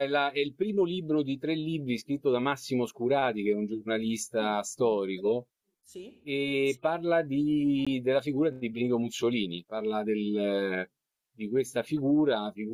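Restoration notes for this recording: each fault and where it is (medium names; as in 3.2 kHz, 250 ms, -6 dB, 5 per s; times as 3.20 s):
7.85–7.87 s: dropout 16 ms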